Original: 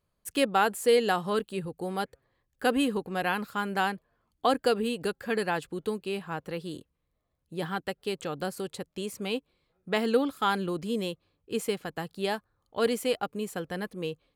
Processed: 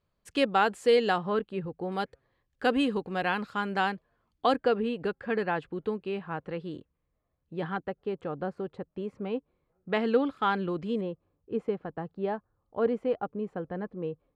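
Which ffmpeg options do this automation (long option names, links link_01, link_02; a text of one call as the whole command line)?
ffmpeg -i in.wav -af "asetnsamples=nb_out_samples=441:pad=0,asendcmd='1.18 lowpass f 2200;1.92 lowpass f 4900;4.56 lowpass f 2300;7.77 lowpass f 1300;9.9 lowpass f 2700;11.01 lowpass f 1100',lowpass=4900" out.wav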